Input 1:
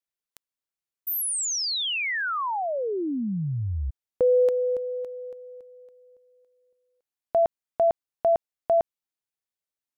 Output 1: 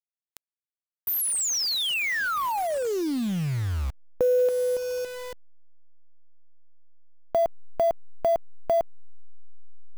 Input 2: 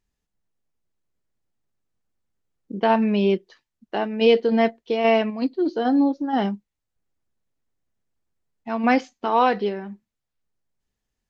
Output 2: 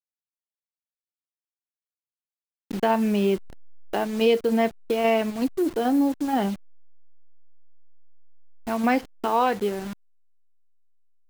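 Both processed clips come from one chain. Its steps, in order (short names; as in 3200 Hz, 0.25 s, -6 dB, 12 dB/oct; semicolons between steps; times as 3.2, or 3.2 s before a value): level-crossing sampler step -34 dBFS; compressor 1.5:1, threshold -32 dBFS; gain +3.5 dB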